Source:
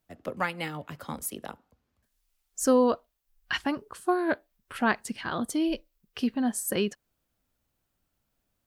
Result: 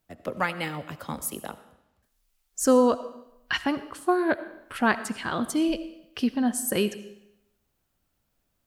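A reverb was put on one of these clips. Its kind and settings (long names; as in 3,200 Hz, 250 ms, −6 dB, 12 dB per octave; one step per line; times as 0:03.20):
comb and all-pass reverb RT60 0.84 s, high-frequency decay 0.95×, pre-delay 40 ms, DRR 13.5 dB
level +2.5 dB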